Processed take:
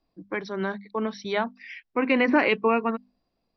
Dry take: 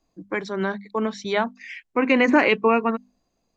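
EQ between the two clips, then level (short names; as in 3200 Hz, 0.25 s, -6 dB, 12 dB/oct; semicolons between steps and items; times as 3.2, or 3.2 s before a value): brick-wall FIR low-pass 5900 Hz; -3.5 dB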